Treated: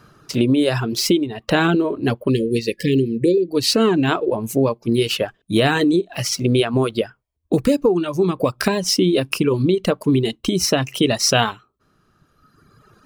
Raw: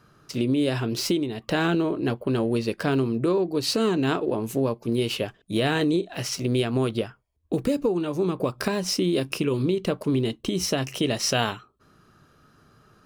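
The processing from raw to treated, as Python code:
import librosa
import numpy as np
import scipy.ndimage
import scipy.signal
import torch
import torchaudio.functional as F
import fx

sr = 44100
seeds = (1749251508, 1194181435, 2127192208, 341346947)

y = fx.dereverb_blind(x, sr, rt60_s=1.8)
y = fx.spec_erase(y, sr, start_s=2.31, length_s=1.18, low_hz=550.0, high_hz=1700.0)
y = y * 10.0 ** (8.0 / 20.0)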